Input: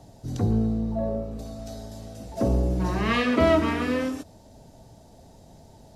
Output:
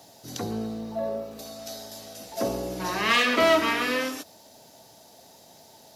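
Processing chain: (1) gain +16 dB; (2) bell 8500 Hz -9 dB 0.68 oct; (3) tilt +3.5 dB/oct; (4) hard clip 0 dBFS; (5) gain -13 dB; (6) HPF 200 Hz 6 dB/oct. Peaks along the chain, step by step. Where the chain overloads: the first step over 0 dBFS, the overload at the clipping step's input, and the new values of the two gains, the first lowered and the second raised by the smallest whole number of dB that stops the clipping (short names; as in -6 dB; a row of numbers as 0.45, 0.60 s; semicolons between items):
+8.0, +8.0, +7.0, 0.0, -13.0, -10.5 dBFS; step 1, 7.0 dB; step 1 +9 dB, step 5 -6 dB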